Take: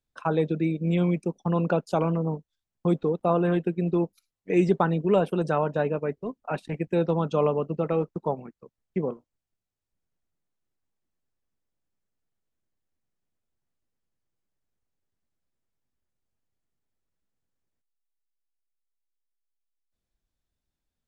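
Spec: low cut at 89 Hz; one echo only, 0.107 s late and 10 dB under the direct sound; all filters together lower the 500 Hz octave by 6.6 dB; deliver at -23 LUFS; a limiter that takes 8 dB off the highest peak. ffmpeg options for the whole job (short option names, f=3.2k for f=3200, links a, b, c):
-af "highpass=89,equalizer=f=500:t=o:g=-8.5,alimiter=limit=-20dB:level=0:latency=1,aecho=1:1:107:0.316,volume=8dB"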